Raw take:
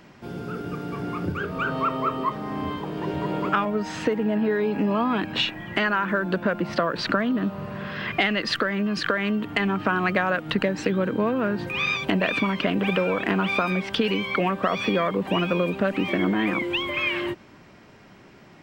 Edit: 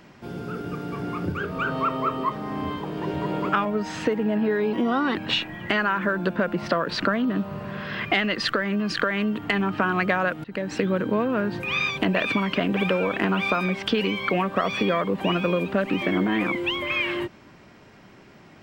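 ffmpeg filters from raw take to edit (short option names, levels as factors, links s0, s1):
-filter_complex "[0:a]asplit=4[s0][s1][s2][s3];[s0]atrim=end=4.734[s4];[s1]atrim=start=4.73:end=5.22,asetpts=PTS-STARTPTS,asetrate=51156,aresample=44100,atrim=end_sample=18628,asetpts=PTS-STARTPTS[s5];[s2]atrim=start=5.216:end=10.51,asetpts=PTS-STARTPTS,afade=t=out:st=5.29:d=0.004:c=hsin[s6];[s3]atrim=start=10.51,asetpts=PTS-STARTPTS,afade=t=in:d=0.42:c=qsin[s7];[s4][s5]acrossfade=d=0.004:c1=hsin:c2=hsin[s8];[s6][s7]concat=n=2:v=0:a=1[s9];[s8][s9]acrossfade=d=0.004:c1=hsin:c2=hsin"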